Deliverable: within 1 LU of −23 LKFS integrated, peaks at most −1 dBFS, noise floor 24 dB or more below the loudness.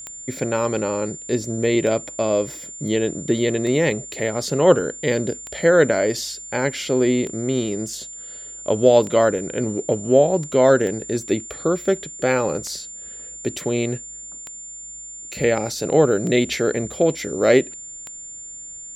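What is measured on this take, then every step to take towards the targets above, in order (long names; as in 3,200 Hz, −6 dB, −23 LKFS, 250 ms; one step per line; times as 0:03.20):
number of clicks 11; interfering tone 7,200 Hz; level of the tone −34 dBFS; integrated loudness −20.5 LKFS; sample peak −2.0 dBFS; target loudness −23.0 LKFS
→ click removal
notch filter 7,200 Hz, Q 30
level −2.5 dB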